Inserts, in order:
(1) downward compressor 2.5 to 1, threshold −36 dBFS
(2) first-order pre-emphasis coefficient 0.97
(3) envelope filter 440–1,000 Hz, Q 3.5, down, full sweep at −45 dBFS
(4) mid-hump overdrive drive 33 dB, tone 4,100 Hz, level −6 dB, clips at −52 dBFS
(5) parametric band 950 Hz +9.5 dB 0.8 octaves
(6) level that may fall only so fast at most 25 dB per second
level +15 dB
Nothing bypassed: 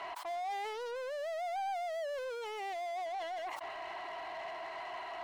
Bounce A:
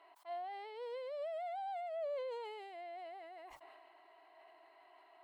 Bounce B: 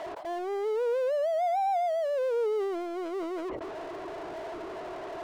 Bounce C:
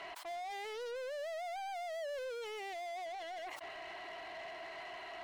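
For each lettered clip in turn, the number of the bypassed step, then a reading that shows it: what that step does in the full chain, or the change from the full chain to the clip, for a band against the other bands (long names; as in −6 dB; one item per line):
4, change in crest factor +1.5 dB
2, 250 Hz band +21.0 dB
5, 1 kHz band −5.0 dB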